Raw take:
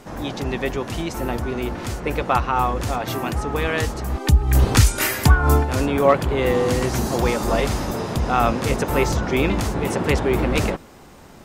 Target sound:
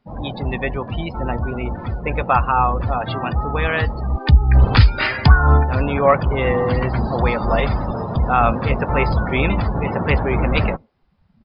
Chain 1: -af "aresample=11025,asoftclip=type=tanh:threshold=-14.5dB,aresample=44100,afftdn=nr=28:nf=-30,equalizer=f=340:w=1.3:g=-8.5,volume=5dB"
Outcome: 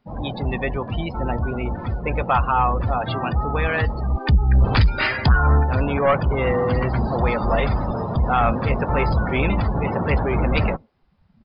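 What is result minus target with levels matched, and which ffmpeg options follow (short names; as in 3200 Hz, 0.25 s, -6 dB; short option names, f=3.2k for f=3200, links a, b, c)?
soft clip: distortion +14 dB
-af "aresample=11025,asoftclip=type=tanh:threshold=-4dB,aresample=44100,afftdn=nr=28:nf=-30,equalizer=f=340:w=1.3:g=-8.5,volume=5dB"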